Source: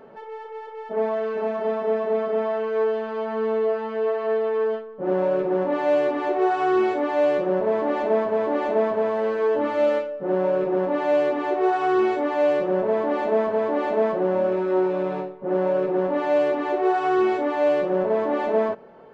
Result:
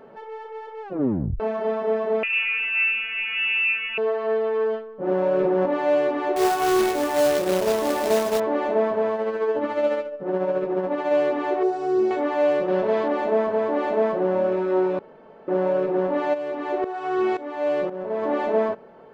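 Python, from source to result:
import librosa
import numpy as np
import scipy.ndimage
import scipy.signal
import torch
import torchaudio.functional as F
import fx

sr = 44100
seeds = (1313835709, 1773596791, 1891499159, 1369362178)

y = fx.freq_invert(x, sr, carrier_hz=3100, at=(2.23, 3.98))
y = fx.env_flatten(y, sr, amount_pct=100, at=(5.26, 5.66))
y = fx.quant_companded(y, sr, bits=4, at=(6.36, 8.4))
y = fx.tremolo(y, sr, hz=14.0, depth=0.44, at=(9.13, 11.1), fade=0.02)
y = fx.band_shelf(y, sr, hz=1700.0, db=-13.0, octaves=2.4, at=(11.63, 12.11))
y = fx.peak_eq(y, sr, hz=4100.0, db=9.0, octaves=1.9, at=(12.68, 13.08))
y = fx.tremolo_shape(y, sr, shape='saw_up', hz=1.9, depth_pct=80, at=(16.33, 18.22), fade=0.02)
y = fx.edit(y, sr, fx.tape_stop(start_s=0.82, length_s=0.58),
    fx.room_tone_fill(start_s=14.99, length_s=0.49), tone=tone)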